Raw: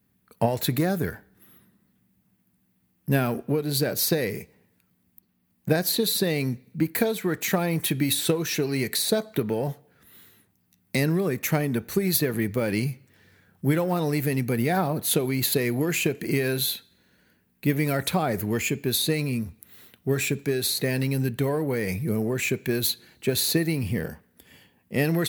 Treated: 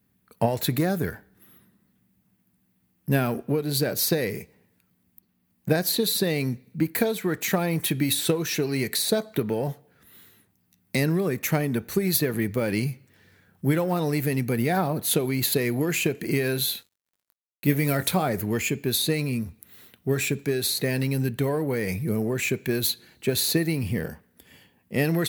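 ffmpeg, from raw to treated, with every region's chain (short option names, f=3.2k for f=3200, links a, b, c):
-filter_complex "[0:a]asettb=1/sr,asplit=3[a][b][c];[a]atrim=end=16.754[d];[b]atrim=start=16.75:end=18.29,asetpts=PTS-STARTPTS,afade=t=in:d=0.004:c=qsin,afade=t=out:st=1.536:d=0.004:c=qsin,highshelf=f=9.2k:g=6.5,acrusher=bits=7:mix=0:aa=0.5,asplit=2[e][f];[f]adelay=21,volume=-11dB[g];[e][g]amix=inputs=2:normalize=0,atrim=end_sample=67914[h];[c]atrim=start=18.286[i];[d][h]acrossfade=d=0.004:c1=hsin:c2=qsin[j];[j][i]acrossfade=d=0.004:c1=qsin:c2=hsin"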